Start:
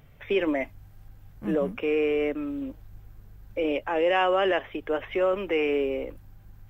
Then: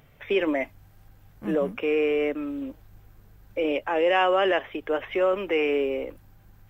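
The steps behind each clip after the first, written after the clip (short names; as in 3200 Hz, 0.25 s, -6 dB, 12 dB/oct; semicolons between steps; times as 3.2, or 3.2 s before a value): low shelf 150 Hz -8 dB; gain +2 dB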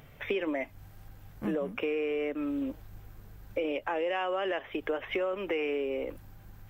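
compressor 6:1, threshold -32 dBFS, peak gain reduction 14 dB; gain +3 dB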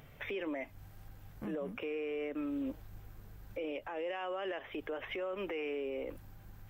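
limiter -28.5 dBFS, peak gain reduction 9.5 dB; gain -2.5 dB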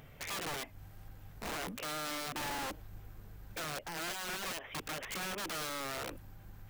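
wrapped overs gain 35.5 dB; gain +1 dB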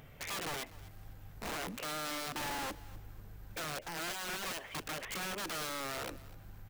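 feedback echo 0.249 s, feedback 26%, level -19.5 dB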